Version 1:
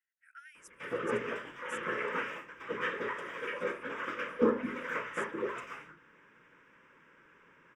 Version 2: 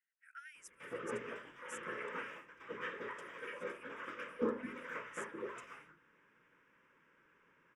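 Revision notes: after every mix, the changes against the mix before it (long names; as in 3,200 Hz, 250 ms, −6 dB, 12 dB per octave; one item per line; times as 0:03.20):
background −8.5 dB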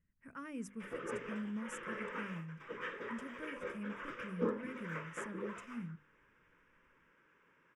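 speech: remove linear-phase brick-wall high-pass 1,300 Hz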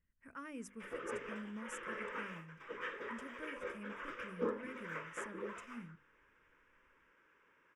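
master: add parametric band 160 Hz −8.5 dB 1.2 octaves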